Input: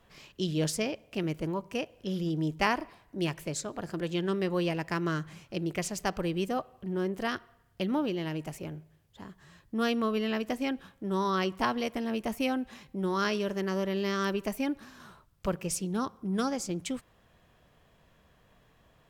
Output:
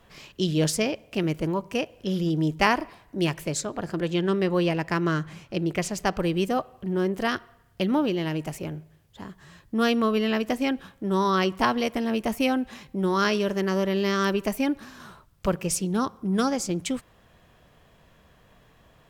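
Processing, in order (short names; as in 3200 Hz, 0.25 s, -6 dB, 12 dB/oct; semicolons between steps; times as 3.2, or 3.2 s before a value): 3.65–6.2 high shelf 5200 Hz -5 dB; gain +6 dB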